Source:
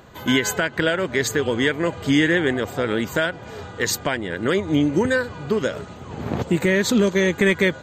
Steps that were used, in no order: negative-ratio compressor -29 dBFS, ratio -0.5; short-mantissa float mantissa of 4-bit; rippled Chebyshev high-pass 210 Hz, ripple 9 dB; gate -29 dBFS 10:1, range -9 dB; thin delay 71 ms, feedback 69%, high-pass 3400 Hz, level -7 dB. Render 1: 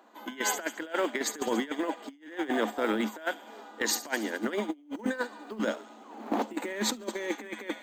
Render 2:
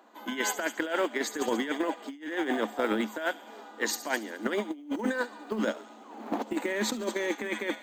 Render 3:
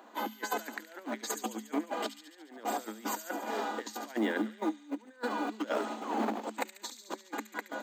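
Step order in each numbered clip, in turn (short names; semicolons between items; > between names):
thin delay > short-mantissa float > rippled Chebyshev high-pass > negative-ratio compressor > gate; thin delay > short-mantissa float > rippled Chebyshev high-pass > gate > negative-ratio compressor; negative-ratio compressor > gate > thin delay > short-mantissa float > rippled Chebyshev high-pass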